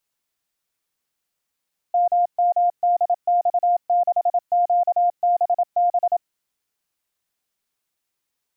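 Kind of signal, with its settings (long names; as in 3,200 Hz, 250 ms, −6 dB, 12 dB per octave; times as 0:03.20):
Morse code "MMDX6QBB" 27 words per minute 704 Hz −14.5 dBFS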